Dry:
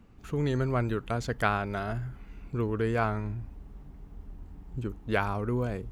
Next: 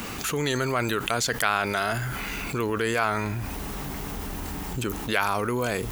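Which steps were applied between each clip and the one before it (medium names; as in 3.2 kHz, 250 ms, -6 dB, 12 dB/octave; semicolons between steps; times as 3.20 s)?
tilt EQ +4 dB/octave; level flattener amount 70%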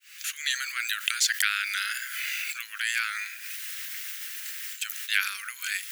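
fade-in on the opening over 0.52 s; steep high-pass 1.6 kHz 48 dB/octave; trim +3.5 dB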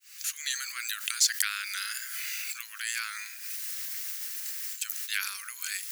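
high-order bell 2.2 kHz -8.5 dB; trim +1.5 dB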